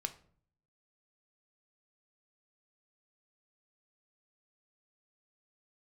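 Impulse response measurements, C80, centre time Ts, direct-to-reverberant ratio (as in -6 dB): 19.5 dB, 6 ms, 7.5 dB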